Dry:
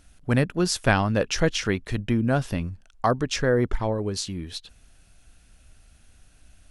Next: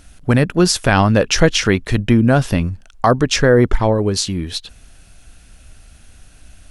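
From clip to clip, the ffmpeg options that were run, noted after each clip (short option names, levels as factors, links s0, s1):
-af "alimiter=level_in=3.76:limit=0.891:release=50:level=0:latency=1,volume=0.891"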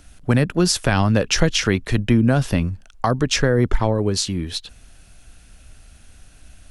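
-filter_complex "[0:a]acrossover=split=220|3000[s0][s1][s2];[s1]acompressor=threshold=0.2:ratio=6[s3];[s0][s3][s2]amix=inputs=3:normalize=0,volume=0.75"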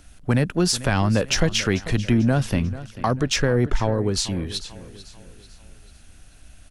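-filter_complex "[0:a]aecho=1:1:442|884|1326|1768:0.141|0.0622|0.0273|0.012,asplit=2[s0][s1];[s1]asoftclip=type=tanh:threshold=0.178,volume=0.473[s2];[s0][s2]amix=inputs=2:normalize=0,volume=0.562"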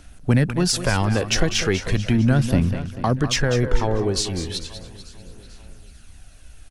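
-af "aecho=1:1:198:0.282,aphaser=in_gain=1:out_gain=1:delay=2.7:decay=0.35:speed=0.36:type=sinusoidal"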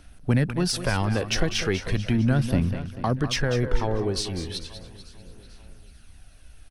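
-af "equalizer=f=7100:w=4.1:g=-8.5,volume=0.631"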